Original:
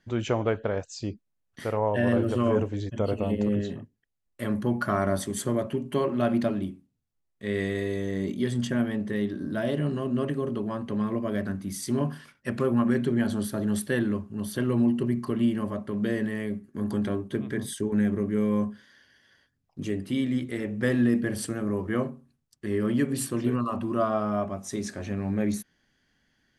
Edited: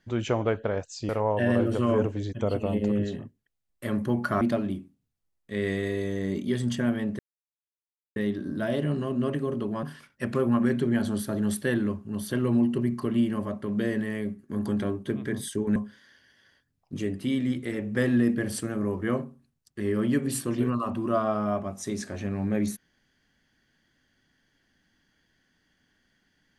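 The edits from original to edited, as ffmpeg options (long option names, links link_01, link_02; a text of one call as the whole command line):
ffmpeg -i in.wav -filter_complex "[0:a]asplit=6[link_01][link_02][link_03][link_04][link_05][link_06];[link_01]atrim=end=1.092[link_07];[link_02]atrim=start=1.658:end=4.982[link_08];[link_03]atrim=start=6.328:end=9.11,asetpts=PTS-STARTPTS,afade=type=out:start_time=2.778:duration=0.004:curve=hsin,apad=pad_dur=0.97[link_09];[link_04]atrim=start=9.11:end=10.782,asetpts=PTS-STARTPTS,afade=type=in:duration=0.004:curve=hsin[link_10];[link_05]atrim=start=12.078:end=18.012[link_11];[link_06]atrim=start=18.618[link_12];[link_07][link_08]acrossfade=duration=0.004:curve1=hsin:curve2=hsin[link_13];[link_09][link_10]concat=n=2:v=0:a=1[link_14];[link_13][link_14]acrossfade=duration=0.004:curve1=hsin:curve2=hsin[link_15];[link_15][link_11]acrossfade=duration=0.004:curve1=hsin:curve2=hsin[link_16];[link_16][link_12]acrossfade=duration=0.004:curve1=hsin:curve2=hsin" out.wav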